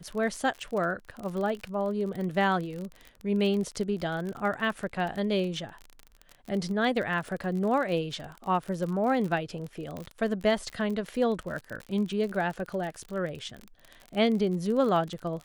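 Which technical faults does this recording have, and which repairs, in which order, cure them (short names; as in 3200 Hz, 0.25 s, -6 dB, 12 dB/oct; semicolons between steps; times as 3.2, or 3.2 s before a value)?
crackle 37/s -33 dBFS
9.97 pop -24 dBFS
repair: de-click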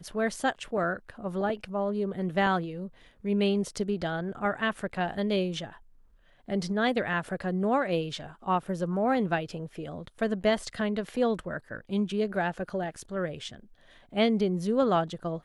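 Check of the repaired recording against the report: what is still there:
none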